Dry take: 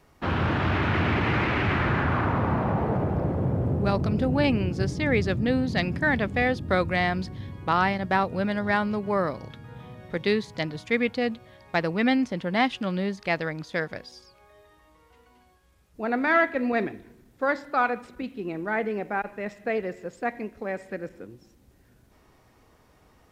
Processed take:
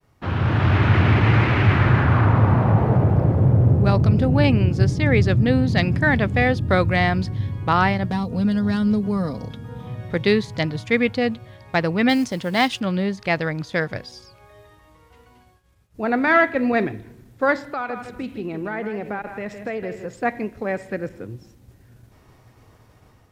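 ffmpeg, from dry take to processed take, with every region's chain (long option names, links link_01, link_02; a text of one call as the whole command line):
ffmpeg -i in.wav -filter_complex "[0:a]asettb=1/sr,asplit=3[link_01][link_02][link_03];[link_01]atrim=end=8.104[link_04];[link_02]atrim=start=8.1:end=9.87,asetpts=PTS-STARTPTS,afade=type=in:duration=0.004:curve=qsin,afade=type=out:start_time=1.766:duration=0.004:curve=qsin,equalizer=frequency=1900:width=0.97:gain=-7.5,acrossover=split=290|3000[link_05][link_06][link_07];[link_06]acompressor=threshold=-37dB:ratio=3:attack=3.2:release=140:knee=2.83:detection=peak[link_08];[link_05][link_08][link_07]amix=inputs=3:normalize=0,aecho=1:1:4.2:0.58,atrim=end_sample=78057[link_09];[link_03]atrim=start=9.866[link_10];[link_04][link_09]acrossfade=duration=0.004:curve1=hsin:curve2=qsin[link_11];[link_11][link_10]acrossfade=duration=0.004:curve1=qsin:curve2=hsin,asettb=1/sr,asplit=3[link_12][link_13][link_14];[link_12]atrim=end=12.094[link_15];[link_13]atrim=start=12.09:end=12.8,asetpts=PTS-STARTPTS,afade=type=in:duration=0.004:curve=qsin,afade=type=out:start_time=0.706:duration=0.004:curve=qsin,bass=frequency=250:gain=-3,treble=frequency=4000:gain=11,acrusher=bits=7:mode=log:mix=0:aa=0.000001[link_16];[link_14]atrim=start=12.796[link_17];[link_15][link_16]acrossfade=duration=0.004:curve1=hsin:curve2=qsin[link_18];[link_18][link_17]acrossfade=duration=0.004:curve1=qsin:curve2=hsin,asettb=1/sr,asplit=3[link_19][link_20][link_21];[link_19]atrim=end=17.724[link_22];[link_20]atrim=start=17.72:end=20.14,asetpts=PTS-STARTPTS,afade=type=in:duration=0.004:curve=qsin,afade=type=out:start_time=2.416:duration=0.004:curve=qsin,acompressor=threshold=-32dB:ratio=3:attack=3.2:release=140:knee=1:detection=peak,aecho=1:1:161:0.335,atrim=end_sample=106722[link_23];[link_21]atrim=start=20.136[link_24];[link_22][link_23]acrossfade=duration=0.004:curve1=hsin:curve2=qsin[link_25];[link_25][link_24]acrossfade=duration=0.004:curve1=qsin:curve2=hsin,agate=range=-33dB:threshold=-56dB:ratio=3:detection=peak,equalizer=frequency=110:width=2.1:gain=11,dynaudnorm=framelen=210:gausssize=5:maxgain=8.5dB,volume=-2.5dB" out.wav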